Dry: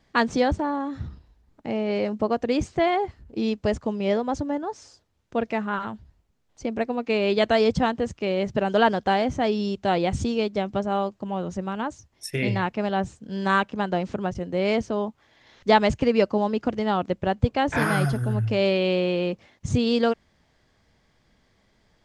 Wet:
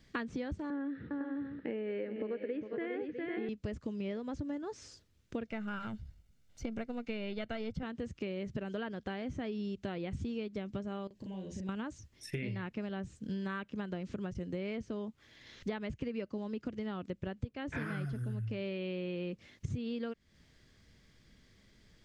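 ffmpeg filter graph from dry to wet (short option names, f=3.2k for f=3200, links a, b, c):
-filter_complex "[0:a]asettb=1/sr,asplit=3[a][b][c];[a]atrim=end=0.704[d];[b]atrim=start=0.7:end=3.49,asetpts=PTS-STARTPTS,afade=t=in:d=0.004:c=qsin,afade=t=out:st=2.786:d=0.004:c=qsin,highpass=280,equalizer=f=290:t=q:w=4:g=5,equalizer=f=480:t=q:w=4:g=9,equalizer=f=680:t=q:w=4:g=-6,equalizer=f=1.1k:t=q:w=4:g=-7,equalizer=f=1.7k:t=q:w=4:g=7,equalizer=f=2.4k:t=q:w=4:g=-3,lowpass=f=2.7k:w=0.5412,lowpass=f=2.7k:w=1.3066,aecho=1:1:406|505|652:0.422|0.398|0.15,atrim=end_sample=123039[e];[c]atrim=start=3.486[f];[d][e]acrossfade=d=0.004:c1=hsin:c2=qsin[g];[g][f]acrossfade=d=0.004:c1=qsin:c2=hsin,asettb=1/sr,asplit=3[h][i][j];[h]atrim=end=5.474[k];[i]atrim=start=5.47:end=7.83,asetpts=PTS-STARTPTS,afade=t=in:d=0.004:c=qsin,afade=t=out:st=2.356:d=0.004:c=qsin,aeval=exprs='if(lt(val(0),0),0.708*val(0),val(0))':c=same,aecho=1:1:1.4:0.44,atrim=end_sample=104076[l];[j]atrim=start=7.826[m];[k][l]acrossfade=d=0.004:c1=hsin:c2=qsin[n];[n][m]acrossfade=d=0.004:c1=qsin:c2=hsin,asettb=1/sr,asplit=3[o][p][q];[o]atrim=end=11.074[r];[p]atrim=start=11.07:end=11.69,asetpts=PTS-STARTPTS,afade=t=in:d=0.004:c=qsin,afade=t=out:st=0.616:d=0.004:c=qsin,asuperstop=centerf=1300:order=4:qfactor=2.6,acompressor=threshold=-40dB:ratio=8:attack=3.2:release=140:knee=1:detection=peak,asplit=2[s][t];[t]adelay=37,volume=-2.5dB[u];[s][u]amix=inputs=2:normalize=0,atrim=end_sample=27342[v];[q]atrim=start=11.686[w];[r][v]acrossfade=d=0.004:c1=hsin:c2=qsin[x];[x][w]acrossfade=d=0.004:c1=qsin:c2=hsin,acrossover=split=3100[y][z];[z]acompressor=threshold=-53dB:ratio=4:attack=1:release=60[aa];[y][aa]amix=inputs=2:normalize=0,equalizer=f=810:t=o:w=1.2:g=-13,acompressor=threshold=-37dB:ratio=10,volume=2dB"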